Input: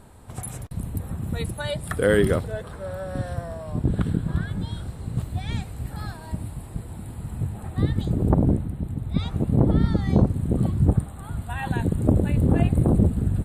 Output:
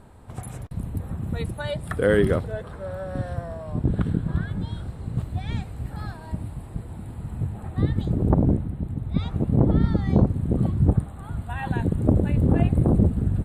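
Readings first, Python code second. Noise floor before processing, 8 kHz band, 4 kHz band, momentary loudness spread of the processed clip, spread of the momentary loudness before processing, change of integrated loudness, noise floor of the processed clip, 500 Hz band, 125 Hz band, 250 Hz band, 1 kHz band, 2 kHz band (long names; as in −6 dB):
−39 dBFS, can't be measured, −4.0 dB, 14 LU, 14 LU, 0.0 dB, −39 dBFS, 0.0 dB, 0.0 dB, 0.0 dB, −0.5 dB, −1.5 dB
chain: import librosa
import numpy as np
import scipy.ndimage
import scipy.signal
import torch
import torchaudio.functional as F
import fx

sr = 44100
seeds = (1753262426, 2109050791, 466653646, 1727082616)

y = fx.high_shelf(x, sr, hz=4200.0, db=-9.5)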